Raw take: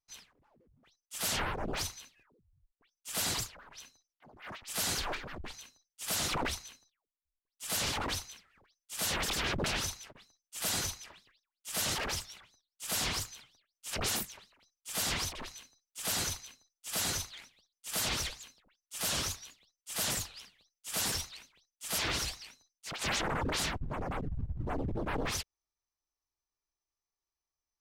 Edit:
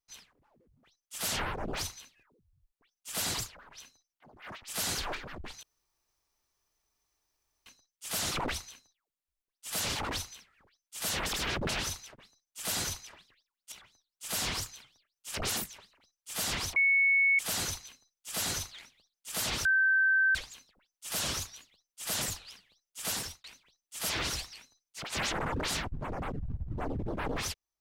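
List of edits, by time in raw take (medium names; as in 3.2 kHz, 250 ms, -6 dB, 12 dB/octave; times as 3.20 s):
5.63 s: insert room tone 2.03 s
11.69–12.31 s: delete
15.35–15.98 s: bleep 2.21 kHz -21.5 dBFS
18.24 s: add tone 1.55 kHz -22 dBFS 0.70 s
20.98–21.33 s: fade out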